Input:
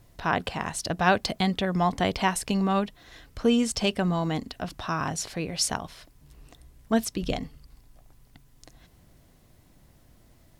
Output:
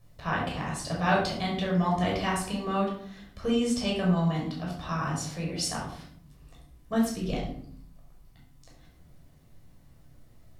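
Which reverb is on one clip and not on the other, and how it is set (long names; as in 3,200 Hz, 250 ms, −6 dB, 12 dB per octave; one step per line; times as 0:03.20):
rectangular room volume 970 cubic metres, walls furnished, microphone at 5.9 metres
level −10.5 dB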